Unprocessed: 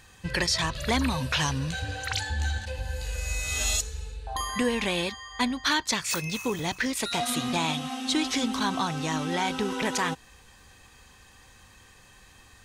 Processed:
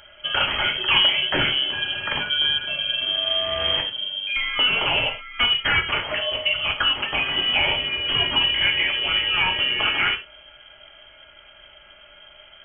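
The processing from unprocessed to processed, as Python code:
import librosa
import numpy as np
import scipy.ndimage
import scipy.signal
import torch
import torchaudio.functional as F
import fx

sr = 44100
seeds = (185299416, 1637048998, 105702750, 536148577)

y = fx.tracing_dist(x, sr, depth_ms=0.19)
y = fx.rev_gated(y, sr, seeds[0], gate_ms=140, shape='falling', drr_db=1.5)
y = fx.freq_invert(y, sr, carrier_hz=3200)
y = F.gain(torch.from_numpy(y), 4.0).numpy()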